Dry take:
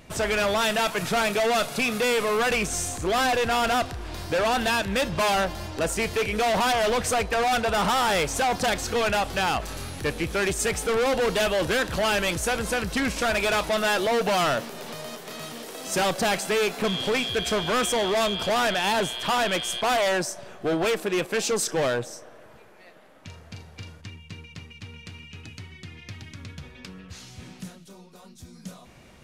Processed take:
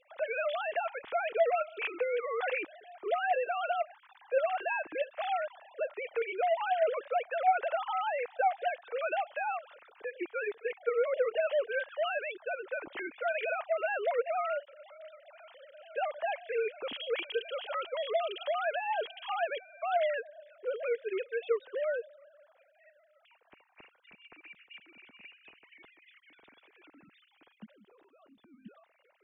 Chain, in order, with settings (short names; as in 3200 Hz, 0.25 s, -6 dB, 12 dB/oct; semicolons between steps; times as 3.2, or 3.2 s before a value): sine-wave speech; gain -8.5 dB